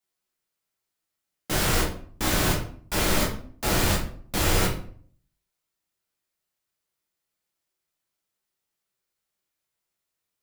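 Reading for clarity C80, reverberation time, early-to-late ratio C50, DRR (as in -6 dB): 11.0 dB, 0.50 s, 6.5 dB, -3.5 dB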